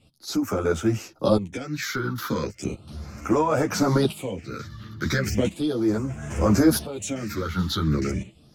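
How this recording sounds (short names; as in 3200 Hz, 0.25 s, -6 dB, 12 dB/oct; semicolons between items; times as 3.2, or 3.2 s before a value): phasing stages 6, 0.36 Hz, lowest notch 640–4000 Hz; tremolo saw up 0.73 Hz, depth 80%; a shimmering, thickened sound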